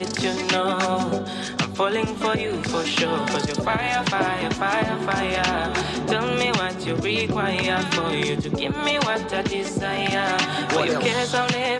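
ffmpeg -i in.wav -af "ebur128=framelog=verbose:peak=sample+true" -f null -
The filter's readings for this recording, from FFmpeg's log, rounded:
Integrated loudness:
  I:         -22.7 LUFS
  Threshold: -32.7 LUFS
Loudness range:
  LRA:         0.8 LU
  Threshold: -42.8 LUFS
  LRA low:   -23.1 LUFS
  LRA high:  -22.4 LUFS
Sample peak:
  Peak:       -6.4 dBFS
True peak:
  Peak:       -6.4 dBFS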